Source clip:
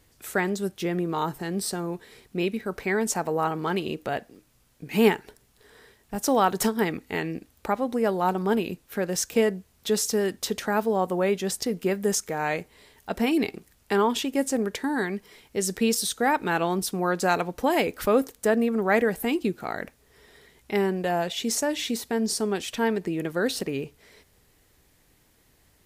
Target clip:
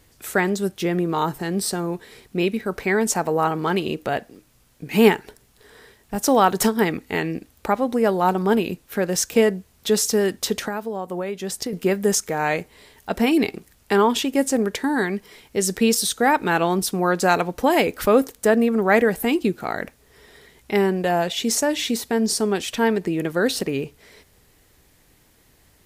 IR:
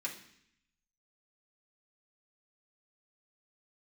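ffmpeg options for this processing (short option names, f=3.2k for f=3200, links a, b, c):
-filter_complex "[0:a]asettb=1/sr,asplit=3[a][b][c];[a]atrim=end=10.614[d];[b]atrim=start=10.61:end=11.73,asetpts=PTS-STARTPTS,afade=t=in:d=0.004:c=qsin,afade=t=out:st=1.116:d=0.004:c=qsin,acompressor=threshold=-29dB:ratio=12[e];[c]atrim=start=11.726[f];[d][e]acrossfade=d=0.004:c1=hsin:c2=qsin[g];[g][f]acrossfade=d=0.004:c1=qsin:c2=hsin,volume=5dB"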